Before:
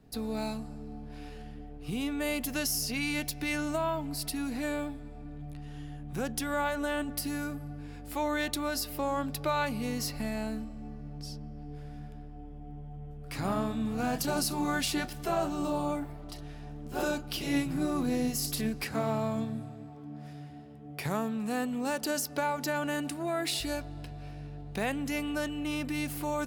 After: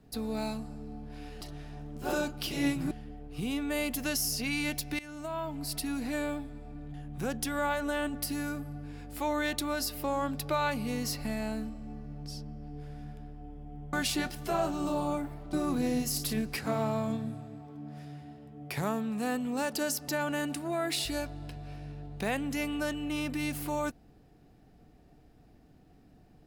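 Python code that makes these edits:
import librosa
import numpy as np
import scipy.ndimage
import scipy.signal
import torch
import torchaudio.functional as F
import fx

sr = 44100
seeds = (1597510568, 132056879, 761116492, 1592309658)

y = fx.edit(x, sr, fx.fade_in_from(start_s=3.49, length_s=0.74, floor_db=-18.5),
    fx.cut(start_s=5.44, length_s=0.45),
    fx.cut(start_s=12.88, length_s=1.83),
    fx.move(start_s=16.31, length_s=1.5, to_s=1.41),
    fx.cut(start_s=22.36, length_s=0.27), tone=tone)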